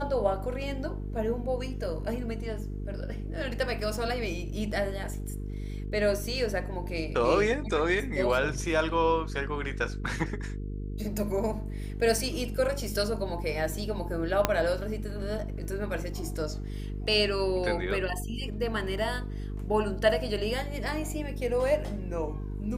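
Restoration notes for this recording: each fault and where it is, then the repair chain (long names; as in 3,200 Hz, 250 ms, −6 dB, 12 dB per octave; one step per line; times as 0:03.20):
mains buzz 50 Hz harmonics 9 −35 dBFS
0:14.45: click −7 dBFS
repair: click removal
hum removal 50 Hz, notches 9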